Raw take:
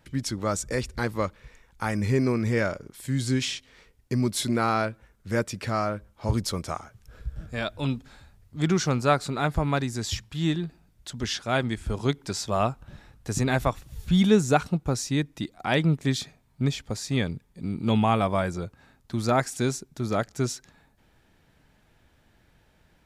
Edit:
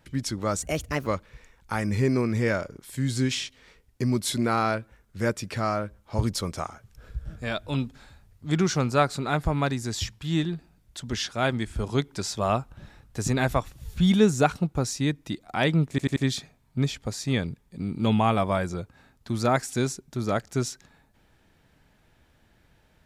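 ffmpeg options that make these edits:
ffmpeg -i in.wav -filter_complex "[0:a]asplit=6[link_01][link_02][link_03][link_04][link_05][link_06];[link_01]atrim=end=0.624[link_07];[link_02]atrim=start=0.62:end=1.17,asetpts=PTS-STARTPTS,asetrate=54684,aresample=44100,atrim=end_sample=19560,asetpts=PTS-STARTPTS[link_08];[link_03]atrim=start=1.166:end=16.092[link_09];[link_04]atrim=start=15.998:end=16.092[link_10];[link_05]atrim=start=15.998:end=16.092[link_11];[link_06]atrim=start=15.998[link_12];[link_07][link_08]acrossfade=duration=0.004:curve1=hsin:curve2=hsin[link_13];[link_13][link_09]acrossfade=duration=0.004:curve1=hsin:curve2=hsin[link_14];[link_14][link_10]acrossfade=duration=0.004:curve1=hsin:curve2=hsin[link_15];[link_15][link_11]acrossfade=duration=0.004:curve1=hsin:curve2=hsin[link_16];[link_16][link_12]acrossfade=duration=0.004:curve1=hsin:curve2=hsin" out.wav

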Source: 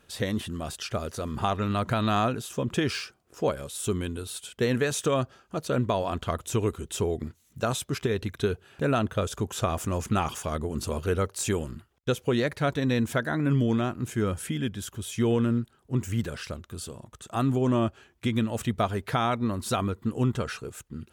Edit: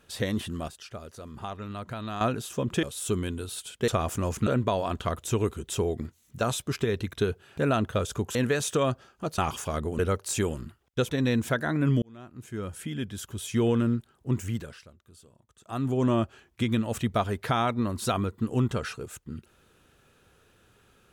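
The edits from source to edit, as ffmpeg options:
ffmpeg -i in.wav -filter_complex "[0:a]asplit=13[link_01][link_02][link_03][link_04][link_05][link_06][link_07][link_08][link_09][link_10][link_11][link_12][link_13];[link_01]atrim=end=0.682[link_14];[link_02]atrim=start=0.678:end=2.212,asetpts=PTS-STARTPTS,volume=-10dB[link_15];[link_03]atrim=start=2.208:end=2.832[link_16];[link_04]atrim=start=3.608:end=4.662[link_17];[link_05]atrim=start=9.568:end=10.162[link_18];[link_06]atrim=start=5.688:end=9.572[link_19];[link_07]atrim=start=4.658:end=5.692[link_20];[link_08]atrim=start=10.158:end=10.772[link_21];[link_09]atrim=start=11.088:end=12.192[link_22];[link_10]atrim=start=12.728:end=13.66,asetpts=PTS-STARTPTS,afade=type=out:start_time=0.928:duration=0.004:curve=hsin[link_23];[link_11]atrim=start=13.66:end=16.49,asetpts=PTS-STARTPTS,afade=type=in:duration=1.41,afade=type=out:start_time=2.34:duration=0.49:silence=0.149624[link_24];[link_12]atrim=start=16.49:end=17.19,asetpts=PTS-STARTPTS,volume=-16.5dB[link_25];[link_13]atrim=start=17.19,asetpts=PTS-STARTPTS,afade=type=in:duration=0.49:silence=0.149624[link_26];[link_14][link_15]acrossfade=duration=0.004:curve1=hsin:curve2=hsin[link_27];[link_27][link_16]acrossfade=duration=0.004:curve1=hsin:curve2=hsin[link_28];[link_28][link_17]acrossfade=duration=0.004:curve1=hsin:curve2=hsin[link_29];[link_29][link_18]acrossfade=duration=0.004:curve1=hsin:curve2=hsin[link_30];[link_30][link_19]acrossfade=duration=0.004:curve1=hsin:curve2=hsin[link_31];[link_31][link_20]acrossfade=duration=0.004:curve1=hsin:curve2=hsin[link_32];[link_32][link_21]acrossfade=duration=0.004:curve1=hsin:curve2=hsin[link_33];[link_33][link_22]acrossfade=duration=0.004:curve1=hsin:curve2=hsin[link_34];[link_23][link_24][link_25][link_26]concat=n=4:v=0:a=1[link_35];[link_34][link_35]acrossfade=duration=0.004:curve1=hsin:curve2=hsin" out.wav

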